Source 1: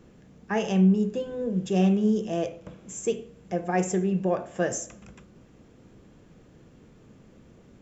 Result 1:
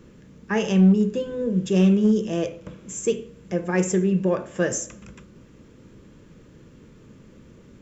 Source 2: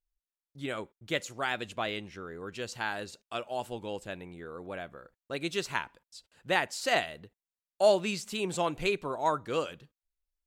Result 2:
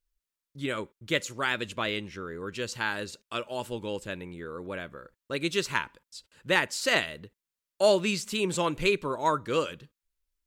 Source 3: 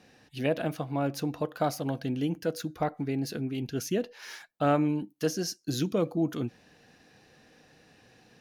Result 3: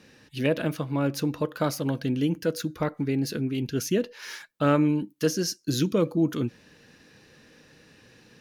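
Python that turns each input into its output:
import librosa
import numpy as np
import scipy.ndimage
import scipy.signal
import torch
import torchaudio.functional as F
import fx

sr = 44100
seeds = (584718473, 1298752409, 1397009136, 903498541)

p1 = fx.peak_eq(x, sr, hz=730.0, db=-14.0, octaves=0.26)
p2 = np.clip(10.0 ** (17.0 / 20.0) * p1, -1.0, 1.0) / 10.0 ** (17.0 / 20.0)
y = p1 + (p2 * librosa.db_to_amplitude(-3.0))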